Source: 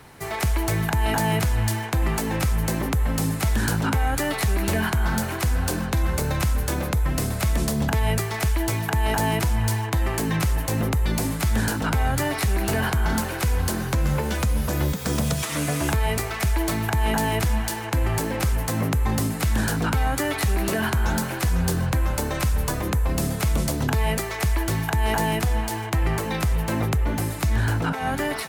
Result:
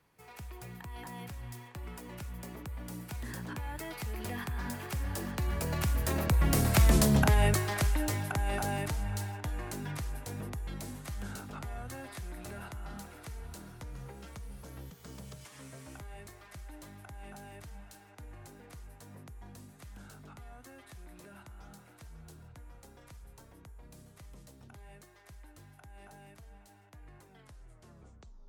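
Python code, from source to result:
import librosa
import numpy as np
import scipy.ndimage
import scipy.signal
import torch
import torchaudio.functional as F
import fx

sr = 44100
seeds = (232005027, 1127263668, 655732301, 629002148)

y = fx.tape_stop_end(x, sr, length_s=2.29)
y = fx.doppler_pass(y, sr, speed_mps=32, closest_m=16.0, pass_at_s=6.93)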